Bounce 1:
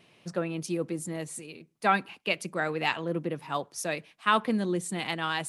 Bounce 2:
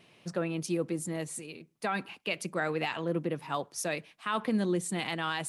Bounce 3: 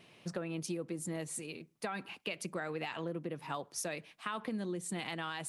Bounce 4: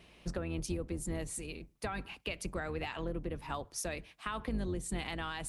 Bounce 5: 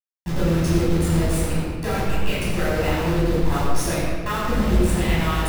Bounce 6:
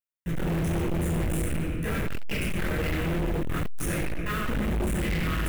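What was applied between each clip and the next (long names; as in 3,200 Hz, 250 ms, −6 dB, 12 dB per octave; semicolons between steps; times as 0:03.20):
brickwall limiter −20 dBFS, peak gain reduction 10 dB
downward compressor, threshold −35 dBFS, peak gain reduction 10 dB
sub-octave generator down 2 octaves, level +1 dB
hold until the input has moved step −36.5 dBFS; convolution reverb RT60 1.7 s, pre-delay 12 ms, DRR −9.5 dB; level +2.5 dB
phaser with its sweep stopped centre 2,000 Hz, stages 4; hard clipping −24.5 dBFS, distortion −6 dB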